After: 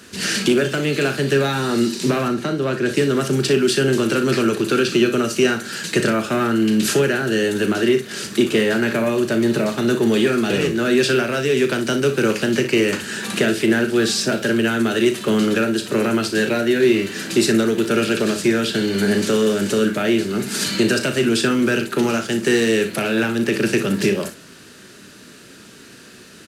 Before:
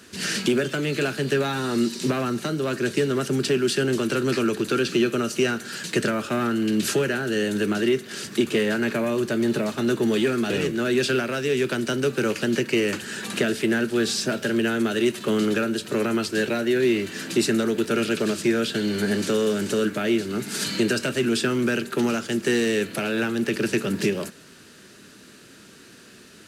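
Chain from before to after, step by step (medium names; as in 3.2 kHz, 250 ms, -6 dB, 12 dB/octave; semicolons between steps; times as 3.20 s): 2.28–2.89 s: treble shelf 5.2 kHz -10.5 dB; early reflections 36 ms -10 dB, 60 ms -12 dB; trim +4.5 dB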